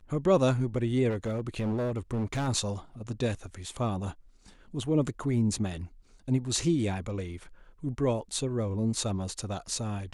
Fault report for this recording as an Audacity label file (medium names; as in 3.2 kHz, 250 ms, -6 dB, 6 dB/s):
1.090000	2.490000	clipped -26.5 dBFS